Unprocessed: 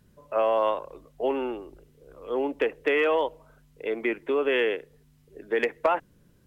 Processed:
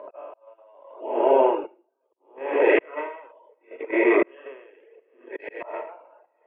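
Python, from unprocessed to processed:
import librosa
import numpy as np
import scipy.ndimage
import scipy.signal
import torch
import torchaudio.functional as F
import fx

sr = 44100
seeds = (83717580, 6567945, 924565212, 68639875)

p1 = fx.spec_dilate(x, sr, span_ms=480)
p2 = fx.auto_swell(p1, sr, attack_ms=111.0)
p3 = fx.cabinet(p2, sr, low_hz=350.0, low_slope=24, high_hz=2300.0, hz=(560.0, 870.0, 1300.0, 1800.0), db=(3, 4, -5, -4))
p4 = fx.doubler(p3, sr, ms=20.0, db=-13.0)
p5 = p4 + fx.echo_single(p4, sr, ms=617, db=-20.0, dry=0)
p6 = fx.room_shoebox(p5, sr, seeds[0], volume_m3=2500.0, walls='furnished', distance_m=2.8)
p7 = fx.auto_swell(p6, sr, attack_ms=444.0)
p8 = fx.level_steps(p7, sr, step_db=23)
p9 = p7 + (p8 * librosa.db_to_amplitude(0.0))
p10 = fx.dereverb_blind(p9, sr, rt60_s=1.0)
p11 = fx.over_compress(p10, sr, threshold_db=-15.0, ratio=-1.0)
y = p11 * 10.0 ** (-37 * (0.5 - 0.5 * np.cos(2.0 * np.pi * 0.73 * np.arange(len(p11)) / sr)) / 20.0)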